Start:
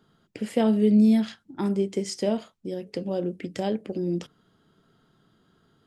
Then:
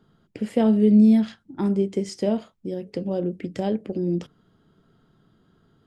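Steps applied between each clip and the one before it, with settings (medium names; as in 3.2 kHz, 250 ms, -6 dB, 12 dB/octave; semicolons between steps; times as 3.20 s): tilt EQ -1.5 dB/octave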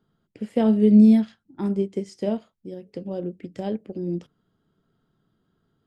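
upward expansion 1.5:1, over -35 dBFS; trim +2 dB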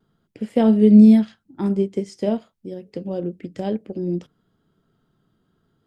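vibrato 0.53 Hz 18 cents; trim +3.5 dB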